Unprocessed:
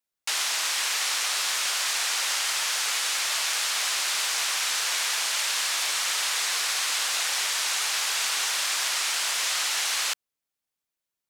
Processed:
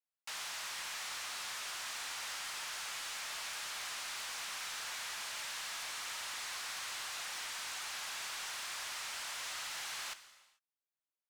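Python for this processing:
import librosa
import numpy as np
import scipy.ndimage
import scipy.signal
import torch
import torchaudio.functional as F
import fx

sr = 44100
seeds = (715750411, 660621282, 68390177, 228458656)

y = scipy.signal.sosfilt(scipy.signal.butter(2, 590.0, 'highpass', fs=sr, output='sos'), x)
y = fx.high_shelf(y, sr, hz=2000.0, db=-7.5)
y = 10.0 ** (-30.0 / 20.0) * np.tanh(y / 10.0 ** (-30.0 / 20.0))
y = fx.rev_gated(y, sr, seeds[0], gate_ms=470, shape='falling', drr_db=11.0)
y = F.gain(torch.from_numpy(y), -7.5).numpy()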